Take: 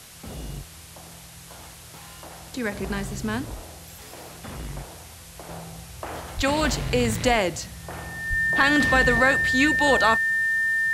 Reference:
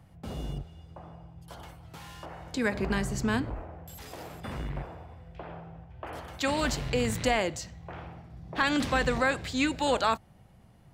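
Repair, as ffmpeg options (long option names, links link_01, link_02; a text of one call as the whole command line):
ffmpeg -i in.wav -filter_complex "[0:a]bandreject=frequency=1800:width=30,asplit=3[link_01][link_02][link_03];[link_01]afade=type=out:start_time=6.36:duration=0.02[link_04];[link_02]highpass=frequency=140:width=0.5412,highpass=frequency=140:width=1.3066,afade=type=in:start_time=6.36:duration=0.02,afade=type=out:start_time=6.48:duration=0.02[link_05];[link_03]afade=type=in:start_time=6.48:duration=0.02[link_06];[link_04][link_05][link_06]amix=inputs=3:normalize=0,asplit=3[link_07][link_08][link_09];[link_07]afade=type=out:start_time=8.29:duration=0.02[link_10];[link_08]highpass=frequency=140:width=0.5412,highpass=frequency=140:width=1.3066,afade=type=in:start_time=8.29:duration=0.02,afade=type=out:start_time=8.41:duration=0.02[link_11];[link_09]afade=type=in:start_time=8.41:duration=0.02[link_12];[link_10][link_11][link_12]amix=inputs=3:normalize=0,afwtdn=0.0063,asetnsamples=nb_out_samples=441:pad=0,asendcmd='5.49 volume volume -5.5dB',volume=0dB" out.wav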